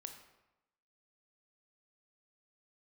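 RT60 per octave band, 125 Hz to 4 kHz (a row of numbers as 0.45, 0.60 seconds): 0.95, 0.95, 0.95, 0.95, 0.85, 0.65 seconds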